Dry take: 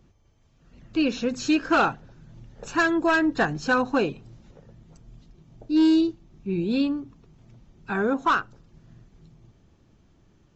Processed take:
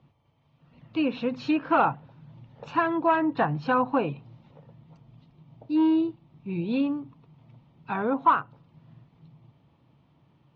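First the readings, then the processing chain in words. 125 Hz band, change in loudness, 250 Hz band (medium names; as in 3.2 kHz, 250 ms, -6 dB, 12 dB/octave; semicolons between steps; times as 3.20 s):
+0.5 dB, -2.0 dB, -3.0 dB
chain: cabinet simulation 130–3700 Hz, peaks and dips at 140 Hz +8 dB, 200 Hz -5 dB, 380 Hz -9 dB, 950 Hz +6 dB, 1.6 kHz -8 dB; low-pass that closes with the level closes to 2 kHz, closed at -20 dBFS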